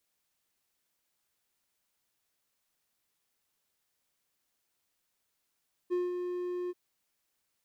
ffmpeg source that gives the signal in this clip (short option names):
-f lavfi -i "aevalsrc='0.0596*(1-4*abs(mod(357*t+0.25,1)-0.5))':d=0.833:s=44100,afade=t=in:d=0.028,afade=t=out:st=0.028:d=0.183:silence=0.501,afade=t=out:st=0.8:d=0.033"